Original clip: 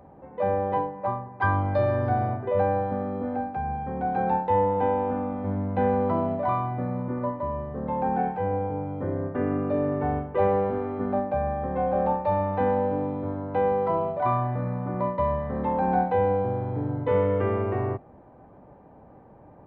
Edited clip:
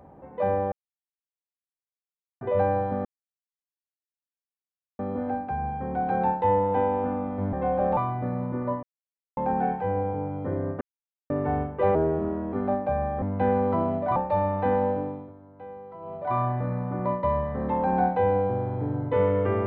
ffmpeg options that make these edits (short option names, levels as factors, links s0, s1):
-filter_complex "[0:a]asplit=16[s0][s1][s2][s3][s4][s5][s6][s7][s8][s9][s10][s11][s12][s13][s14][s15];[s0]atrim=end=0.72,asetpts=PTS-STARTPTS,afade=t=out:st=0.716:d=0.004:c=hsin[s16];[s1]atrim=start=0.72:end=2.41,asetpts=PTS-STARTPTS,volume=0[s17];[s2]atrim=start=2.41:end=3.05,asetpts=PTS-STARTPTS,afade=t=in:d=0.004:c=hsin,afade=t=out:st=0.636:d=0.004:c=hsin,apad=pad_dur=1.94[s18];[s3]atrim=start=3.05:end=5.592,asetpts=PTS-STARTPTS,afade=t=in:d=0.004:c=hsin[s19];[s4]atrim=start=11.668:end=12.112[s20];[s5]atrim=start=6.528:end=7.39,asetpts=PTS-STARTPTS,afade=t=out:st=0.858:d=0.004:c=hsin[s21];[s6]atrim=start=7.39:end=7.93,asetpts=PTS-STARTPTS,volume=0[s22];[s7]atrim=start=7.93:end=9.37,asetpts=PTS-STARTPTS,afade=t=in:d=0.004:c=hsin,afade=t=out:st=1.436:d=0.004:c=hsin[s23];[s8]atrim=start=9.37:end=9.86,asetpts=PTS-STARTPTS,volume=0[s24];[s9]atrim=start=9.86:end=10.514,asetpts=PTS-STARTPTS,afade=t=in:d=0.004:c=hsin[s25];[s10]atrim=start=10.51:end=10.98,asetpts=PTS-STARTPTS,asetrate=35721,aresample=44100[s26];[s11]atrim=start=10.976:end=11.672[s27];[s12]atrim=start=5.588:end=6.532[s28];[s13]atrim=start=12.108:end=13.28,asetpts=PTS-STARTPTS,afade=t=out:st=0.722:d=0.45:silence=0.125893[s29];[s14]atrim=start=13.28:end=13.95,asetpts=PTS-STARTPTS,volume=0.126[s30];[s15]atrim=start=13.95,asetpts=PTS-STARTPTS,afade=t=in:d=0.45:silence=0.125893[s31];[s16][s17][s18][s19]concat=n=4:v=0:a=1[s32];[s32][s20]acrossfade=d=0.004:c1=hsin:c2=hsin[s33];[s21][s22][s23][s24][s25]concat=n=5:v=0:a=1[s34];[s33][s34]acrossfade=d=0.004:c1=hsin:c2=hsin[s35];[s35][s26]acrossfade=d=0.004:c1=hsin:c2=hsin[s36];[s36][s27]acrossfade=d=0.004:c1=hsin:c2=hsin[s37];[s37][s28]acrossfade=d=0.004:c1=hsin:c2=hsin[s38];[s29][s30][s31]concat=n=3:v=0:a=1[s39];[s38][s39]acrossfade=d=0.004:c1=hsin:c2=hsin"